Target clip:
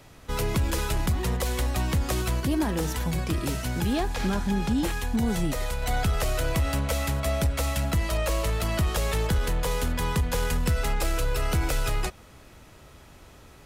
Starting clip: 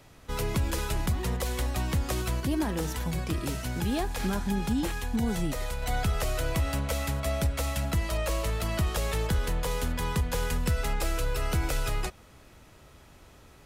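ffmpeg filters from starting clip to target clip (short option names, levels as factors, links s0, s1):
-filter_complex "[0:a]asplit=2[s0][s1];[s1]asoftclip=type=hard:threshold=0.0501,volume=0.501[s2];[s0][s2]amix=inputs=2:normalize=0,asettb=1/sr,asplit=3[s3][s4][s5];[s3]atrim=end=3.934[s6];[s4]atrim=start=3.93:end=4.78,asetpts=PTS-STARTPTS,afade=t=in:d=0.004:c=qsin,afade=t=out:st=0.846:d=0.004:c=qsin,acrossover=split=7300[s7][s8];[s8]acompressor=threshold=0.00355:ratio=4:attack=1:release=60[s9];[s7][s9]amix=inputs=2:normalize=0[s10];[s5]atrim=start=4.776[s11];[s6][s10]acrossfade=d=0.004:c1=hsin:c2=qsin[s12];[s12][s11]acrossfade=d=0.004:c1=qsin:c2=hsin"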